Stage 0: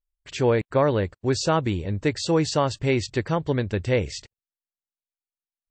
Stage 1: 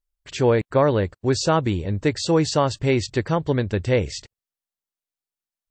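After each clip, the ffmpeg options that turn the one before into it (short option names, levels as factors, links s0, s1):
-af "equalizer=f=2400:t=o:w=0.77:g=-2,volume=1.33"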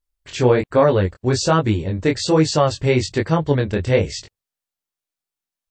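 -af "flanger=delay=18.5:depth=5.9:speed=1.2,volume=2"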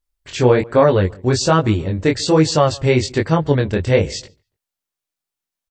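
-filter_complex "[0:a]asplit=2[s0][s1];[s1]adelay=143,lowpass=f=1600:p=1,volume=0.0668,asplit=2[s2][s3];[s3]adelay=143,lowpass=f=1600:p=1,volume=0.35[s4];[s0][s2][s4]amix=inputs=3:normalize=0,volume=1.26"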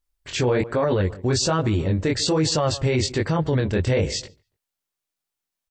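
-af "alimiter=limit=0.224:level=0:latency=1:release=25"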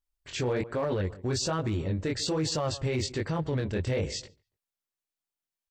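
-af "asoftclip=type=hard:threshold=0.188,volume=0.398"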